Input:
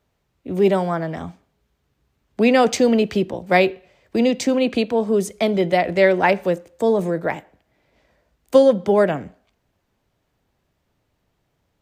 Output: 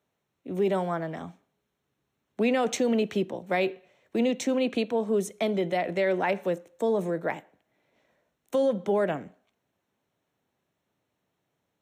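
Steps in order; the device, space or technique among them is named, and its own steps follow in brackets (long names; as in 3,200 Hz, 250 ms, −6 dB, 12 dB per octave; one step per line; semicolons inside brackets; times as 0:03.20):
PA system with an anti-feedback notch (high-pass filter 150 Hz 12 dB per octave; Butterworth band-reject 4,800 Hz, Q 6.6; brickwall limiter −10.5 dBFS, peak gain reduction 8.5 dB)
level −6.5 dB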